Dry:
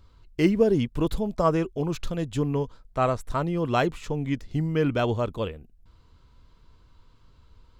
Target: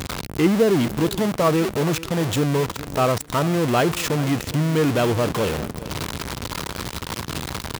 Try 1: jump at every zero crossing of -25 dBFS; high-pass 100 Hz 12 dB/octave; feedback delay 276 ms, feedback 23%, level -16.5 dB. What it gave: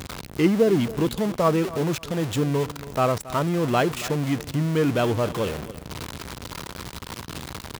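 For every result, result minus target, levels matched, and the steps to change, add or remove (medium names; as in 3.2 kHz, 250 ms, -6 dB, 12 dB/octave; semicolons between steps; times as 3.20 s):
echo 138 ms early; jump at every zero crossing: distortion -4 dB
change: feedback delay 414 ms, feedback 23%, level -16.5 dB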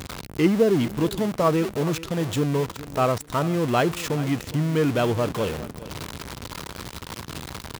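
jump at every zero crossing: distortion -4 dB
change: jump at every zero crossing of -18.5 dBFS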